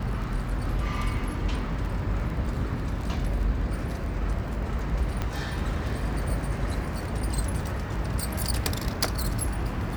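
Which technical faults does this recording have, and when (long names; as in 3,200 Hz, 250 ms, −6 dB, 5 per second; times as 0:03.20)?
surface crackle 21 per second
0:05.22: click −15 dBFS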